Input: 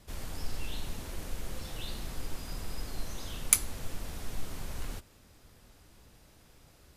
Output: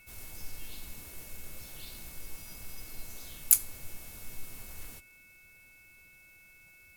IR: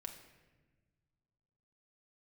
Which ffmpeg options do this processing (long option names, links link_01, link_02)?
-filter_complex "[0:a]aeval=exprs='val(0)+0.00398*sin(2*PI*2200*n/s)':channel_layout=same,asplit=3[link_01][link_02][link_03];[link_02]asetrate=29433,aresample=44100,atempo=1.49831,volume=-10dB[link_04];[link_03]asetrate=52444,aresample=44100,atempo=0.840896,volume=-3dB[link_05];[link_01][link_04][link_05]amix=inputs=3:normalize=0,aemphasis=mode=production:type=50fm,volume=-11.5dB"